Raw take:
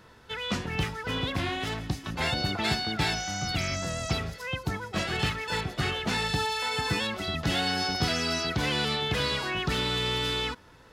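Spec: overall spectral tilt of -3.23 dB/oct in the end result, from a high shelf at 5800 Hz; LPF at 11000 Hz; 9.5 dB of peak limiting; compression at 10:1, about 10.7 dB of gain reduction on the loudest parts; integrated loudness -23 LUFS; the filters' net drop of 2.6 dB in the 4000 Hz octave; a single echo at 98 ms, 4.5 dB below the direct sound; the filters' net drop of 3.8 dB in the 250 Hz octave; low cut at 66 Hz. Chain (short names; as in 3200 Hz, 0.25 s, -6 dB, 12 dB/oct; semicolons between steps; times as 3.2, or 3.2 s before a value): HPF 66 Hz; LPF 11000 Hz; bell 250 Hz -5.5 dB; bell 4000 Hz -6.5 dB; high shelf 5800 Hz +9 dB; compressor 10:1, threshold -36 dBFS; limiter -34 dBFS; echo 98 ms -4.5 dB; gain +18.5 dB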